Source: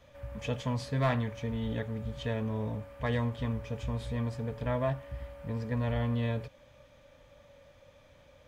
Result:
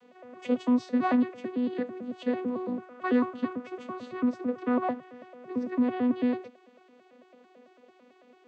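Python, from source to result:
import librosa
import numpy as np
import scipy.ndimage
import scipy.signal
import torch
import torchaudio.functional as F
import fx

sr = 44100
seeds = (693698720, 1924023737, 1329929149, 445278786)

y = fx.vocoder_arp(x, sr, chord='bare fifth', root=59, every_ms=111)
y = fx.peak_eq(y, sr, hz=1300.0, db=7.5, octaves=0.5, at=(2.78, 4.84))
y = F.gain(torch.from_numpy(y), 4.5).numpy()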